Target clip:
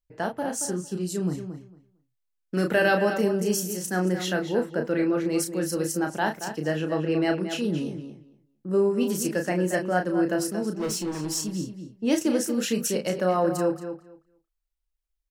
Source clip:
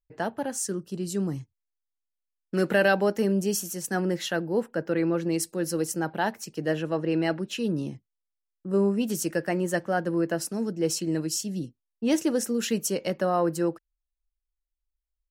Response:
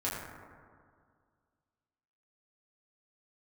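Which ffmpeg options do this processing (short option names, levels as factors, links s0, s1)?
-filter_complex "[0:a]asettb=1/sr,asplit=3[s0][s1][s2];[s0]atrim=end=10.734[s3];[s1]atrim=start=10.73:end=11.35,asetpts=PTS-STARTPTS,afade=t=in:d=0.004:c=qsin,afade=t=out:st=0.616:d=0.004:c=qsin,asoftclip=type=hard:threshold=0.0447[s4];[s2]atrim=start=11.346[s5];[s3][s4]acrossfade=d=0.004:c1=hsin:c2=qsin[s6];[s6][s5]acrossfade=d=0.004:c1=qsin:c2=hsin,asplit=2[s7][s8];[s8]adelay=33,volume=0.531[s9];[s7][s9]amix=inputs=2:normalize=0,asplit=2[s10][s11];[s11]adelay=227,lowpass=f=4100:p=1,volume=0.355,asplit=2[s12][s13];[s13]adelay=227,lowpass=f=4100:p=1,volume=0.17,asplit=2[s14][s15];[s15]adelay=227,lowpass=f=4100:p=1,volume=0.17[s16];[s10][s12][s14][s16]amix=inputs=4:normalize=0"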